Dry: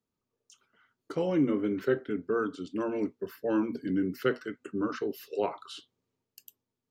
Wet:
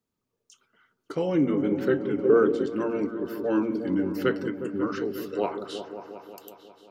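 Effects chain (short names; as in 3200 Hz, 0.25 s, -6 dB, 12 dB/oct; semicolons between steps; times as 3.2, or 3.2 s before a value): repeats that get brighter 0.18 s, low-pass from 400 Hz, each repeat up 1 oct, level -6 dB; 2.17–2.66 dynamic EQ 470 Hz, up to +8 dB, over -40 dBFS, Q 0.74; gain +2.5 dB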